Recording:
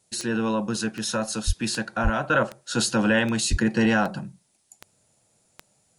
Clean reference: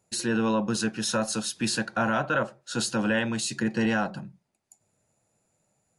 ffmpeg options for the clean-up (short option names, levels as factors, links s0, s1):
-filter_complex "[0:a]adeclick=t=4,asplit=3[s0][s1][s2];[s0]afade=t=out:st=1.46:d=0.02[s3];[s1]highpass=f=140:w=0.5412,highpass=f=140:w=1.3066,afade=t=in:st=1.46:d=0.02,afade=t=out:st=1.58:d=0.02[s4];[s2]afade=t=in:st=1.58:d=0.02[s5];[s3][s4][s5]amix=inputs=3:normalize=0,asplit=3[s6][s7][s8];[s6]afade=t=out:st=2.03:d=0.02[s9];[s7]highpass=f=140:w=0.5412,highpass=f=140:w=1.3066,afade=t=in:st=2.03:d=0.02,afade=t=out:st=2.15:d=0.02[s10];[s8]afade=t=in:st=2.15:d=0.02[s11];[s9][s10][s11]amix=inputs=3:normalize=0,asplit=3[s12][s13][s14];[s12]afade=t=out:st=3.5:d=0.02[s15];[s13]highpass=f=140:w=0.5412,highpass=f=140:w=1.3066,afade=t=in:st=3.5:d=0.02,afade=t=out:st=3.62:d=0.02[s16];[s14]afade=t=in:st=3.62:d=0.02[s17];[s15][s16][s17]amix=inputs=3:normalize=0,agate=range=0.0891:threshold=0.00126,asetnsamples=n=441:p=0,asendcmd='2.3 volume volume -4.5dB',volume=1"